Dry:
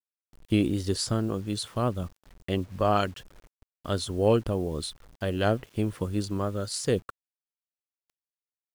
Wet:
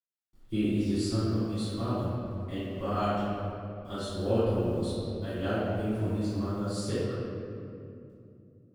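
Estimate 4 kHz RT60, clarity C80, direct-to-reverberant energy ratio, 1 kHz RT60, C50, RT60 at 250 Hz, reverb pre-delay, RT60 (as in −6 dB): 1.5 s, −2.0 dB, −16.5 dB, 2.2 s, −5.0 dB, 3.7 s, 3 ms, 2.6 s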